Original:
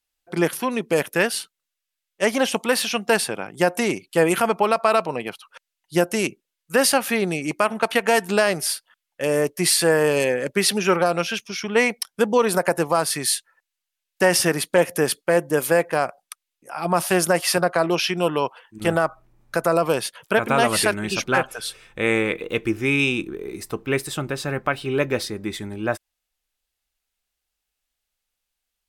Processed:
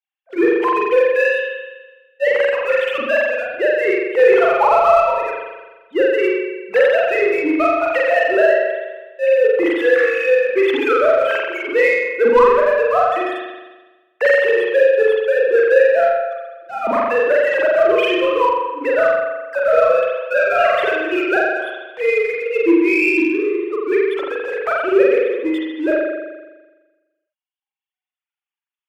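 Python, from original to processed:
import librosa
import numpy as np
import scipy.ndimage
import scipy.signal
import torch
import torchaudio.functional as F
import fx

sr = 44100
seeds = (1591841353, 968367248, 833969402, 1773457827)

p1 = fx.sine_speech(x, sr)
p2 = fx.dereverb_blind(p1, sr, rt60_s=1.9)
p3 = fx.leveller(p2, sr, passes=1)
p4 = fx.rev_spring(p3, sr, rt60_s=1.2, pass_ms=(41,), chirp_ms=70, drr_db=-4.5)
p5 = 10.0 ** (-15.5 / 20.0) * np.tanh(p4 / 10.0 ** (-15.5 / 20.0))
p6 = p4 + (p5 * 10.0 ** (-7.0 / 20.0))
y = p6 * 10.0 ** (-4.0 / 20.0)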